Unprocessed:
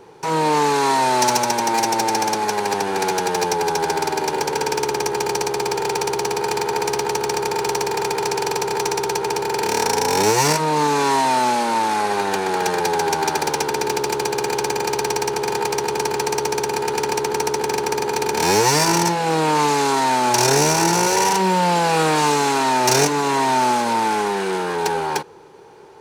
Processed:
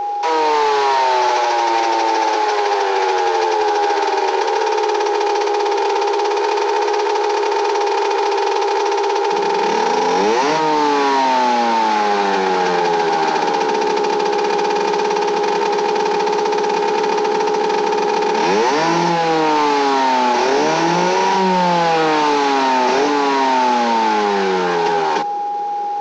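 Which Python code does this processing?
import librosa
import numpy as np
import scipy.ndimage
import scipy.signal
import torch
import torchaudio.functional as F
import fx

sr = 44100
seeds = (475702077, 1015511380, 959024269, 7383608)

y = fx.cvsd(x, sr, bps=32000)
y = fx.steep_highpass(y, sr, hz=fx.steps((0.0, 330.0), (9.31, 170.0)), slope=96)
y = 10.0 ** (-8.0 / 20.0) * np.tanh(y / 10.0 ** (-8.0 / 20.0))
y = y + 10.0 ** (-29.0 / 20.0) * np.sin(2.0 * np.pi * 820.0 * np.arange(len(y)) / sr)
y = fx.env_flatten(y, sr, amount_pct=50)
y = y * librosa.db_to_amplitude(3.0)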